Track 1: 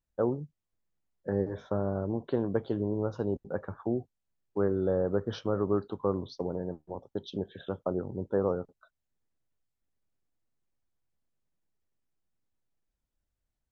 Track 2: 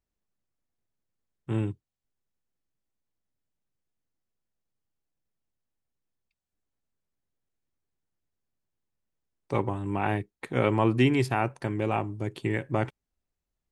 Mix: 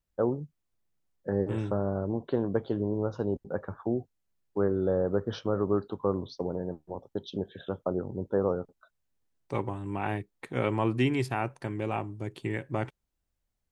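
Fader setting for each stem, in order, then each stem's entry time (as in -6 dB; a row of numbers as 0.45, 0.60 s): +1.0, -4.0 dB; 0.00, 0.00 s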